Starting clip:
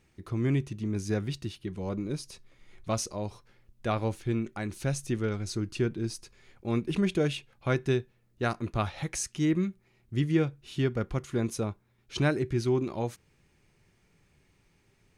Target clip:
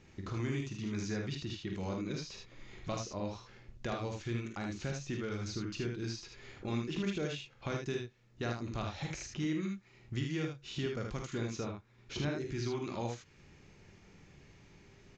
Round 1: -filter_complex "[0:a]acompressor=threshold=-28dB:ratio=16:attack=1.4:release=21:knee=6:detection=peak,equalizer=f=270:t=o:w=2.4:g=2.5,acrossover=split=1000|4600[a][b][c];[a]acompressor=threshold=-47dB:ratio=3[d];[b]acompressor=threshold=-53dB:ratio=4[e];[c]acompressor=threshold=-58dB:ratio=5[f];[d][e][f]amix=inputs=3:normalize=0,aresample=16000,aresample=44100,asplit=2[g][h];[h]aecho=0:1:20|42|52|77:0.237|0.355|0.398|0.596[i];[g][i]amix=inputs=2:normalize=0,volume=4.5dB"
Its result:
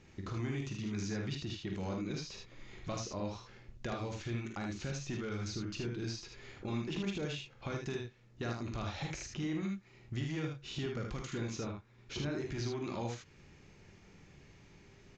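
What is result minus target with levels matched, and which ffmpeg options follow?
compressor: peak gain reduction +11 dB
-filter_complex "[0:a]equalizer=f=270:t=o:w=2.4:g=2.5,acrossover=split=1000|4600[a][b][c];[a]acompressor=threshold=-47dB:ratio=3[d];[b]acompressor=threshold=-53dB:ratio=4[e];[c]acompressor=threshold=-58dB:ratio=5[f];[d][e][f]amix=inputs=3:normalize=0,aresample=16000,aresample=44100,asplit=2[g][h];[h]aecho=0:1:20|42|52|77:0.237|0.355|0.398|0.596[i];[g][i]amix=inputs=2:normalize=0,volume=4.5dB"

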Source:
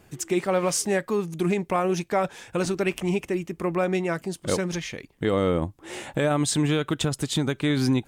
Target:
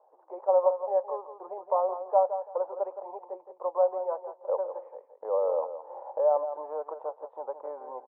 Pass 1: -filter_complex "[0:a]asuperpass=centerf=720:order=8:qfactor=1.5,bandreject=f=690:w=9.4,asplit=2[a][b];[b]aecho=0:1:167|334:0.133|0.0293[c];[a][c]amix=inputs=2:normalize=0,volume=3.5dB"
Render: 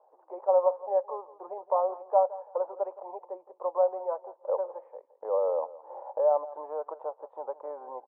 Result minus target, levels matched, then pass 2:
echo-to-direct -7.5 dB
-filter_complex "[0:a]asuperpass=centerf=720:order=8:qfactor=1.5,bandreject=f=690:w=9.4,asplit=2[a][b];[b]aecho=0:1:167|334|501:0.316|0.0696|0.0153[c];[a][c]amix=inputs=2:normalize=0,volume=3.5dB"

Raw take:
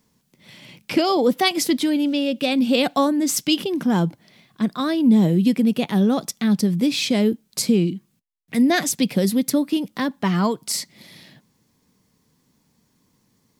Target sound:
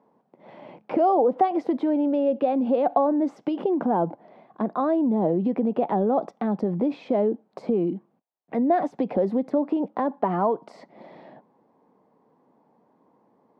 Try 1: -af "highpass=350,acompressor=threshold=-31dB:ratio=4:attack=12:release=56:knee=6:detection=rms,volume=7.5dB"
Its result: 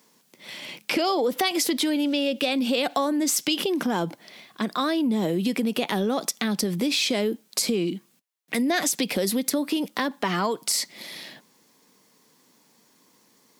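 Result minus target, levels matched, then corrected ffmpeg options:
1000 Hz band -4.0 dB
-af "highpass=350,acompressor=threshold=-31dB:ratio=4:attack=12:release=56:knee=6:detection=rms,lowpass=f=770:t=q:w=2.2,volume=7.5dB"

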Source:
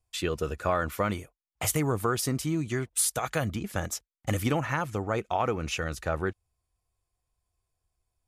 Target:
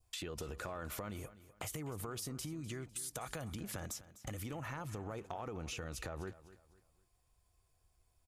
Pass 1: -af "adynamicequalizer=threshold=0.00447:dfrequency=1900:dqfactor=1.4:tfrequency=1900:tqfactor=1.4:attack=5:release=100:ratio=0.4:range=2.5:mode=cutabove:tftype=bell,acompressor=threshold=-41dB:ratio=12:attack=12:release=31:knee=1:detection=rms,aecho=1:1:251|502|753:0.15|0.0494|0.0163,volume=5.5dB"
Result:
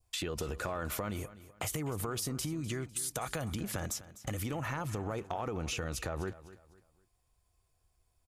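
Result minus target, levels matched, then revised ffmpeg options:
compressor: peak gain reduction -7 dB
-af "adynamicequalizer=threshold=0.00447:dfrequency=1900:dqfactor=1.4:tfrequency=1900:tqfactor=1.4:attack=5:release=100:ratio=0.4:range=2.5:mode=cutabove:tftype=bell,acompressor=threshold=-48.5dB:ratio=12:attack=12:release=31:knee=1:detection=rms,aecho=1:1:251|502|753:0.15|0.0494|0.0163,volume=5.5dB"

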